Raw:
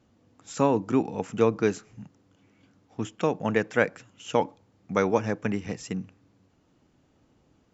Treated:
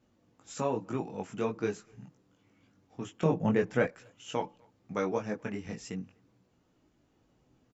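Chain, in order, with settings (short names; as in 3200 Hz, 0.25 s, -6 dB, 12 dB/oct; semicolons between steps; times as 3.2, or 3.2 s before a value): chorus voices 4, 0.41 Hz, delay 20 ms, depth 4.2 ms; in parallel at -2.5 dB: compressor, threshold -36 dBFS, peak gain reduction 15.5 dB; 3.23–3.87 on the sum: low shelf 410 Hz +11 dB; speakerphone echo 0.25 s, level -29 dB; gain -6.5 dB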